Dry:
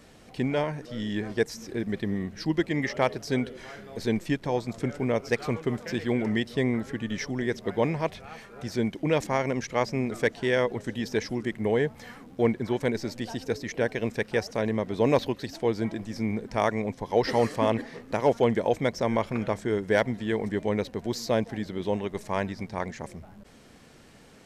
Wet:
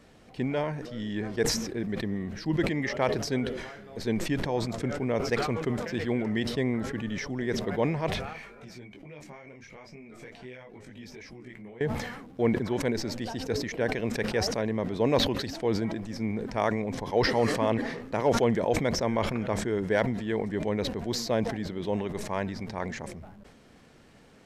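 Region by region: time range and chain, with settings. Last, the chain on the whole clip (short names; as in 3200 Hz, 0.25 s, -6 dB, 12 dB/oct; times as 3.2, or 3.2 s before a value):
8.33–11.81 bell 2300 Hz +10 dB 0.23 oct + compressor 10:1, threshold -36 dBFS + detuned doubles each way 13 cents
whole clip: high shelf 4900 Hz -6.5 dB; sustainer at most 50 dB/s; gain -2.5 dB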